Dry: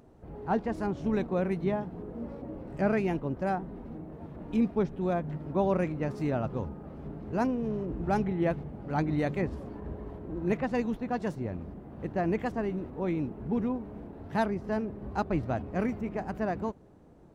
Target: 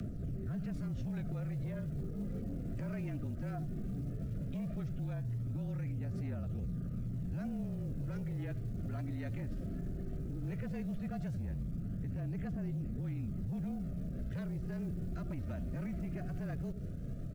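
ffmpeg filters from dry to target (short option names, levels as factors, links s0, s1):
-filter_complex "[0:a]asuperstop=centerf=960:order=20:qfactor=2.1,asplit=2[s0][s1];[s1]adelay=80,lowpass=f=860:p=1,volume=0.106,asplit=2[s2][s3];[s3]adelay=80,lowpass=f=860:p=1,volume=0.27[s4];[s0][s2][s4]amix=inputs=3:normalize=0,acrossover=split=96|450|1100|2700[s5][s6][s7][s8][s9];[s5]acompressor=threshold=0.00398:ratio=4[s10];[s6]acompressor=threshold=0.0126:ratio=4[s11];[s7]acompressor=threshold=0.0112:ratio=4[s12];[s8]acompressor=threshold=0.00562:ratio=4[s13];[s9]acompressor=threshold=0.00158:ratio=4[s14];[s10][s11][s12][s13][s14]amix=inputs=5:normalize=0,lowshelf=f=290:t=q:w=1.5:g=10.5,asoftclip=type=tanh:threshold=0.0794,afreqshift=-32,acrusher=bits=9:mode=log:mix=0:aa=0.000001,aphaser=in_gain=1:out_gain=1:delay=3.4:decay=0.31:speed=0.16:type=triangular,alimiter=level_in=7.5:limit=0.0631:level=0:latency=1:release=183,volume=0.133,volume=2.82"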